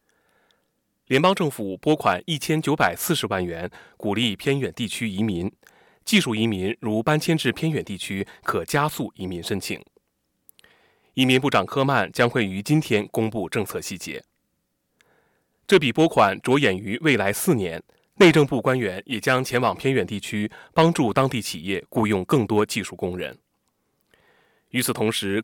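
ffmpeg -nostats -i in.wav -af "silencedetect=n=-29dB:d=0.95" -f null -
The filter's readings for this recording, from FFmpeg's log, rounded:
silence_start: 0.00
silence_end: 1.11 | silence_duration: 1.11
silence_start: 14.18
silence_end: 15.69 | silence_duration: 1.50
silence_start: 23.32
silence_end: 24.74 | silence_duration: 1.42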